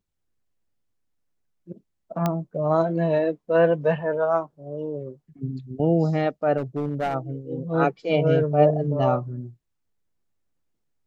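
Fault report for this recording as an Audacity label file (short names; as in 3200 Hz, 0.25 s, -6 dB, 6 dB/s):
2.260000	2.260000	pop -10 dBFS
6.570000	7.150000	clipped -21 dBFS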